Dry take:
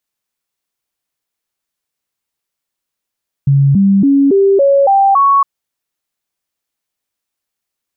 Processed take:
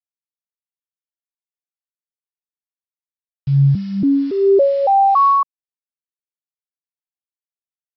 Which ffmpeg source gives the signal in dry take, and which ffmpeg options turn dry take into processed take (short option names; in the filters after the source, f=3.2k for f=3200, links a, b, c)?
-f lavfi -i "aevalsrc='0.501*clip(min(mod(t,0.28),0.28-mod(t,0.28))/0.005,0,1)*sin(2*PI*139*pow(2,floor(t/0.28)/2)*mod(t,0.28))':d=1.96:s=44100"
-filter_complex "[0:a]aresample=11025,acrusher=bits=6:mix=0:aa=0.000001,aresample=44100,equalizer=f=220:t=o:w=0.61:g=-8.5,acrossover=split=930[a][b];[a]aeval=exprs='val(0)*(1-0.7/2+0.7/2*cos(2*PI*2.2*n/s))':c=same[c];[b]aeval=exprs='val(0)*(1-0.7/2-0.7/2*cos(2*PI*2.2*n/s))':c=same[d];[c][d]amix=inputs=2:normalize=0"